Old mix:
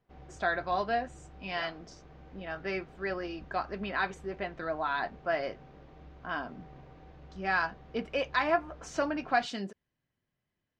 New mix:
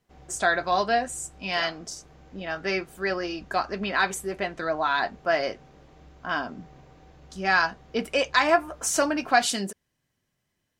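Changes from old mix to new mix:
speech +6.0 dB; master: remove distance through air 190 m

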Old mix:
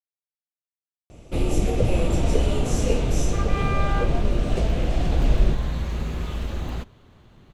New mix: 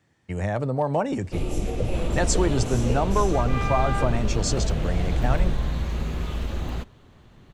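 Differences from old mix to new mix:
speech: unmuted; first sound -5.0 dB

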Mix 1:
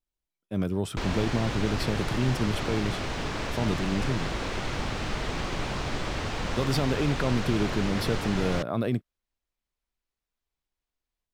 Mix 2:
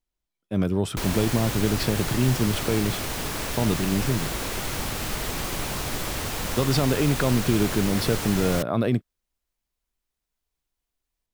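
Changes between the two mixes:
speech +4.5 dB; background: remove distance through air 130 m

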